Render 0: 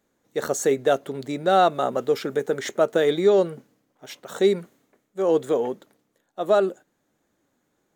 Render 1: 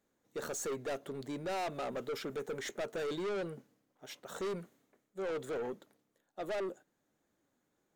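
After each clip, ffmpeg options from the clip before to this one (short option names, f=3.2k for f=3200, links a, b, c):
-af "aeval=exprs='(tanh(20*val(0)+0.1)-tanh(0.1))/20':c=same,volume=-8dB"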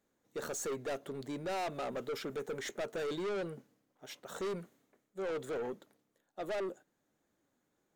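-af anull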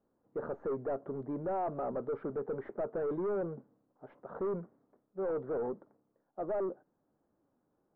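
-af "lowpass=f=1.2k:w=0.5412,lowpass=f=1.2k:w=1.3066,volume=3dB"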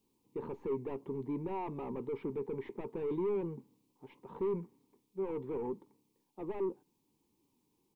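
-af "firequalizer=gain_entry='entry(410,0);entry(630,-21);entry(930,4);entry(1400,-18);entry(2300,12)':delay=0.05:min_phase=1,volume=1dB"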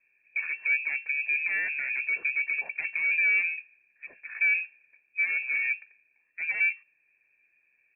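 -af "lowpass=f=2.3k:t=q:w=0.5098,lowpass=f=2.3k:t=q:w=0.6013,lowpass=f=2.3k:t=q:w=0.9,lowpass=f=2.3k:t=q:w=2.563,afreqshift=-2700,volume=9dB"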